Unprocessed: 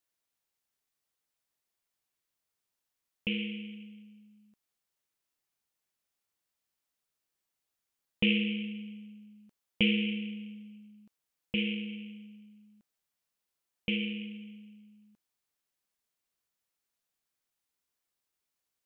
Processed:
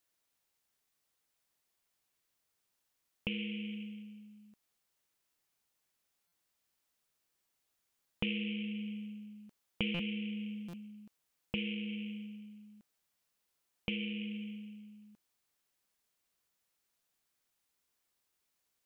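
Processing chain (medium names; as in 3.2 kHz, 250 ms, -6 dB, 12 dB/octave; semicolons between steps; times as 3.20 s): compression 3:1, threshold -41 dBFS, peak gain reduction 14 dB; buffer glitch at 6.27/9.94/10.68 s, samples 256, times 8; trim +4 dB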